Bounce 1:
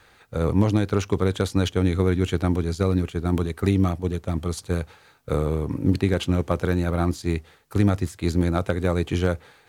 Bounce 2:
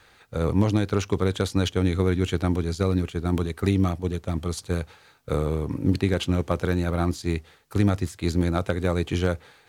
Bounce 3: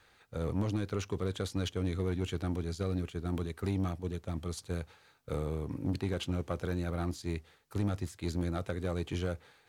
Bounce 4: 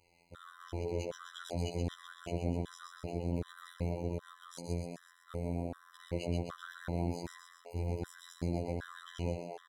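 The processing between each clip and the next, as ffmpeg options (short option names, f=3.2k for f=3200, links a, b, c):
-af "equalizer=f=4.3k:w=0.64:g=2.5,volume=-1.5dB"
-af "asoftclip=type=tanh:threshold=-15.5dB,volume=-8.5dB"
-filter_complex "[0:a]asplit=9[a][b][c][d][e][f][g][h][i];[b]adelay=127,afreqshift=110,volume=-4dB[j];[c]adelay=254,afreqshift=220,volume=-8.9dB[k];[d]adelay=381,afreqshift=330,volume=-13.8dB[l];[e]adelay=508,afreqshift=440,volume=-18.6dB[m];[f]adelay=635,afreqshift=550,volume=-23.5dB[n];[g]adelay=762,afreqshift=660,volume=-28.4dB[o];[h]adelay=889,afreqshift=770,volume=-33.3dB[p];[i]adelay=1016,afreqshift=880,volume=-38.2dB[q];[a][j][k][l][m][n][o][p][q]amix=inputs=9:normalize=0,afftfilt=real='hypot(re,im)*cos(PI*b)':imag='0':win_size=2048:overlap=0.75,afftfilt=real='re*gt(sin(2*PI*1.3*pts/sr)*(1-2*mod(floor(b*sr/1024/1000),2)),0)':imag='im*gt(sin(2*PI*1.3*pts/sr)*(1-2*mod(floor(b*sr/1024/1000),2)),0)':win_size=1024:overlap=0.75"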